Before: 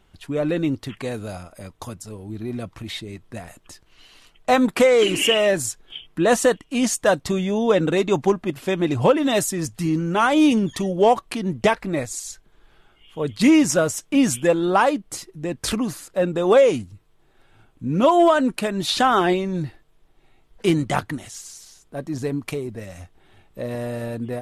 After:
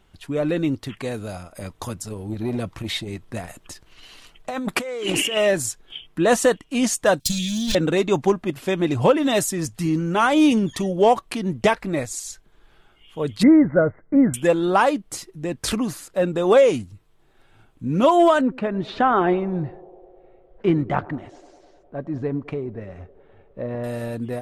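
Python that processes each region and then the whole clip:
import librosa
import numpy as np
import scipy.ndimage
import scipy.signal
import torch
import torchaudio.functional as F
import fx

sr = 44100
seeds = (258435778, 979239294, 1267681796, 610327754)

y = fx.chain(x, sr, fx.over_compress(threshold_db=-24.0, ratio=-1.0),
    fx.transformer_sat(knee_hz=770.0), at=(1.55, 5.37))
y = fx.chain(y, sr, fx.lower_of_two(delay_ms=1.2),
    fx.curve_eq(hz=(220.0, 880.0, 4000.0), db=(0, -30, 13)), at=(7.2, 7.75))
y = fx.chain(y, sr, fx.cheby_ripple(hz=2100.0, ripple_db=6),
    fx.low_shelf(hz=300.0, db=10.0), at=(13.43, 14.34))
y = fx.chain(y, sr, fx.lowpass(hz=1700.0, slope=12),
    fx.echo_banded(ms=102, feedback_pct=85, hz=520.0, wet_db=-19.5), at=(18.41, 23.84))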